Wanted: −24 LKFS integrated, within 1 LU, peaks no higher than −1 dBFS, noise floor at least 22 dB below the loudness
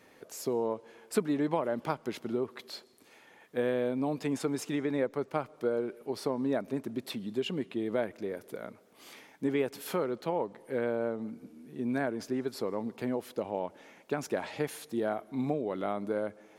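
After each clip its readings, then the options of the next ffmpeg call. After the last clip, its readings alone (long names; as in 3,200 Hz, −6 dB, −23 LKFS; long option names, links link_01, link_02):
integrated loudness −34.0 LKFS; sample peak −14.5 dBFS; target loudness −24.0 LKFS
→ -af "volume=10dB"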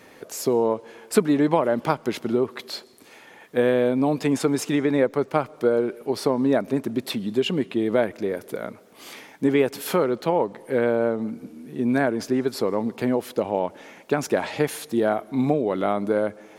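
integrated loudness −24.0 LKFS; sample peak −4.5 dBFS; background noise floor −49 dBFS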